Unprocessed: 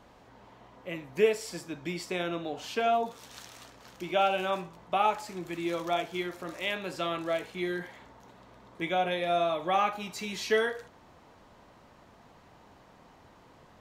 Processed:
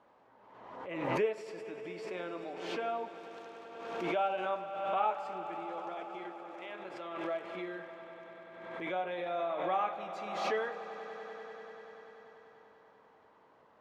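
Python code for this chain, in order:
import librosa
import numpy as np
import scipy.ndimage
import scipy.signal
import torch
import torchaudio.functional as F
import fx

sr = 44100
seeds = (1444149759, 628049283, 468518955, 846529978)

y = fx.notch(x, sr, hz=710.0, q=15.0)
y = fx.level_steps(y, sr, step_db=9, at=(5.58, 7.24))
y = fx.bandpass_q(y, sr, hz=810.0, q=0.75)
y = fx.echo_swell(y, sr, ms=97, loudest=5, wet_db=-16.0)
y = fx.pre_swell(y, sr, db_per_s=42.0)
y = y * 10.0 ** (-5.0 / 20.0)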